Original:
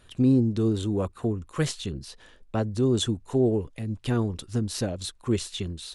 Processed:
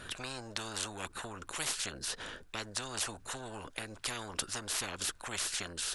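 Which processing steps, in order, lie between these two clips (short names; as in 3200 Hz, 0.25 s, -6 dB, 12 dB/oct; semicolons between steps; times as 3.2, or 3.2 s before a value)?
bell 1500 Hz +9 dB 0.34 oct; spectral compressor 10:1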